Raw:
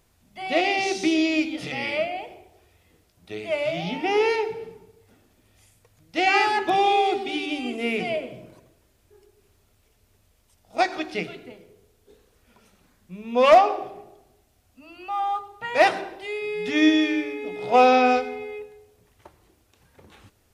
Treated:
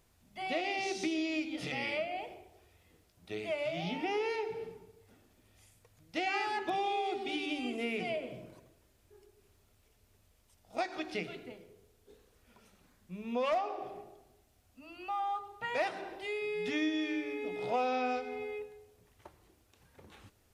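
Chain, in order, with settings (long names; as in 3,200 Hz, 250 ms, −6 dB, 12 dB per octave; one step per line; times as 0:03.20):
downward compressor 3 to 1, threshold −28 dBFS, peak gain reduction 13.5 dB
level −5 dB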